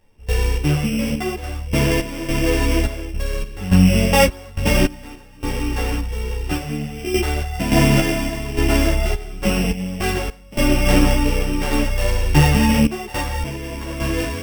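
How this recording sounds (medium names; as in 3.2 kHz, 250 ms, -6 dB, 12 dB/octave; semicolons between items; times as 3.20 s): a buzz of ramps at a fixed pitch in blocks of 16 samples; random-step tremolo, depth 95%; a shimmering, thickened sound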